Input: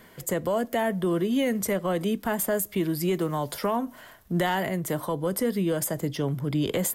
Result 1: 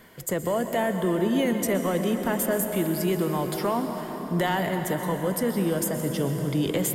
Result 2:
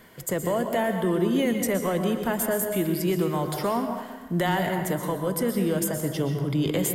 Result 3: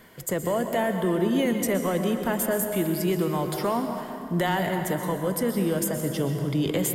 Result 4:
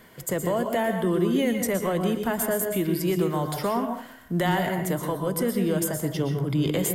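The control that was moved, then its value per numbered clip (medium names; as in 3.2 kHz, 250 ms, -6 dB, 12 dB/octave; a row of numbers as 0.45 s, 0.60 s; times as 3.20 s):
plate-style reverb, RT60: 5.2 s, 1.2 s, 2.5 s, 0.53 s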